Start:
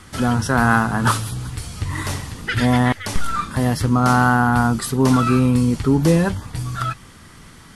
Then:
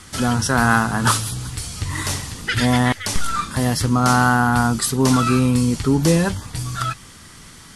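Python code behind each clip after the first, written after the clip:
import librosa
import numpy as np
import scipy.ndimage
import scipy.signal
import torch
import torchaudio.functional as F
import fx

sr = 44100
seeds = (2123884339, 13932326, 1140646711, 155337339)

y = fx.peak_eq(x, sr, hz=7000.0, db=8.0, octaves=2.3)
y = y * librosa.db_to_amplitude(-1.0)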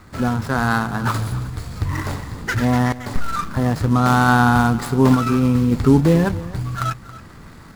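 y = scipy.ndimage.median_filter(x, 15, mode='constant')
y = fx.tremolo_random(y, sr, seeds[0], hz=3.5, depth_pct=55)
y = y + 10.0 ** (-17.0 / 20.0) * np.pad(y, (int(276 * sr / 1000.0), 0))[:len(y)]
y = y * librosa.db_to_amplitude(4.5)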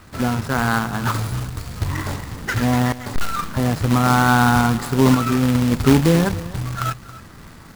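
y = fx.quant_companded(x, sr, bits=4)
y = y * librosa.db_to_amplitude(-1.0)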